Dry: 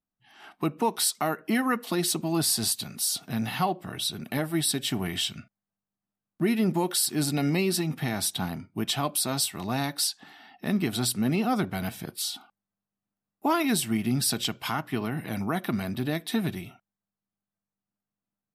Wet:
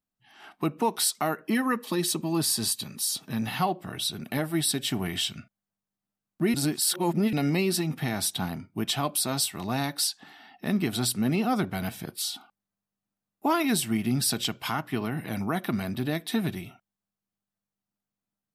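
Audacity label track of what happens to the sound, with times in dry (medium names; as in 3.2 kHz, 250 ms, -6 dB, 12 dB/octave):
1.450000	3.470000	comb of notches 710 Hz
6.540000	7.330000	reverse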